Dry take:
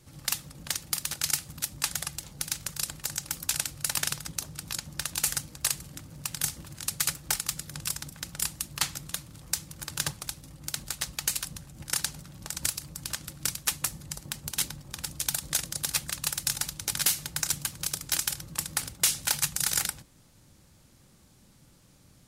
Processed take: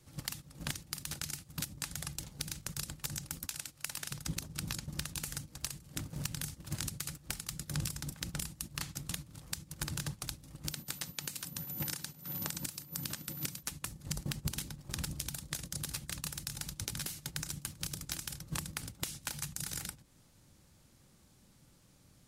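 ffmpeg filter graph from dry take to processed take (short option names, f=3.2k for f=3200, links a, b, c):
-filter_complex "[0:a]asettb=1/sr,asplit=3[a][b][c];[a]atrim=end=3.454[d];[b]atrim=start=3.45:end=4.11,asetpts=PTS-STARTPTS,afade=t=in:d=0.004:c=qsin,afade=t=out:st=0.656:d=0.004:c=qsin,lowshelf=f=340:g=-11,acrusher=bits=9:mode=log:mix=0:aa=0.000001[e];[c]atrim=start=4.106[f];[d][e]acrossfade=d=0.004:c1=hsin:c2=qsin[g];[g][f]acrossfade=d=0.004:c1=qsin:c2=hsin,asettb=1/sr,asplit=3[h][i][j];[h]atrim=end=10.714[k];[i]atrim=start=10.71:end=13.63,asetpts=PTS-STARTPTS,afade=t=in:d=0.004:c=qsin,afade=t=out:st=2.916:d=0.004:c=qsin,highpass=150,aeval=exprs='val(0)+0.00708*sin(2*PI*14000*n/s)':c=same[l];[j]atrim=start=13.626[m];[k][l]acrossfade=d=0.004:c1=hsin:c2=qsin[n];[n][m]acrossfade=d=0.004:c1=qsin:c2=hsin,acompressor=threshold=-35dB:ratio=8,agate=range=-14dB:threshold=-44dB:ratio=16:detection=peak,acrossover=split=360[o][p];[p]acompressor=threshold=-45dB:ratio=10[q];[o][q]amix=inputs=2:normalize=0,volume=9dB"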